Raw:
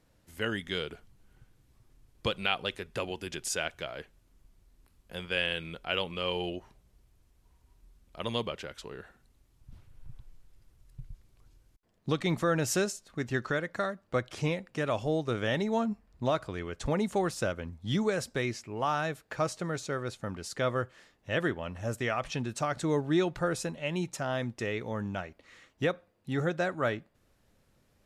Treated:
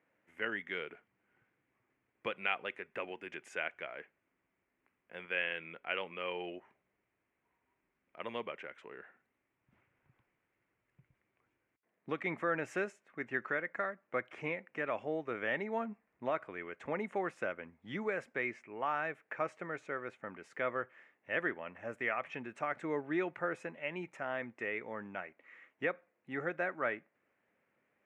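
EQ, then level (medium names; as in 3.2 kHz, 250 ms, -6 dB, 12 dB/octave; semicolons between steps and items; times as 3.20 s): band-pass 270–7700 Hz; resonant high shelf 3.1 kHz -12.5 dB, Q 3; -6.5 dB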